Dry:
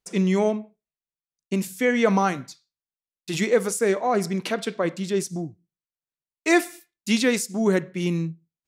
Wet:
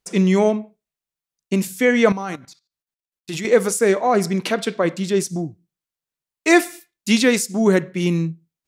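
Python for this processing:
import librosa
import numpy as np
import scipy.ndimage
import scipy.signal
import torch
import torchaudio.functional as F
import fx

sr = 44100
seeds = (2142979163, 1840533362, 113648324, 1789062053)

y = fx.level_steps(x, sr, step_db=16, at=(2.12, 3.45))
y = F.gain(torch.from_numpy(y), 5.0).numpy()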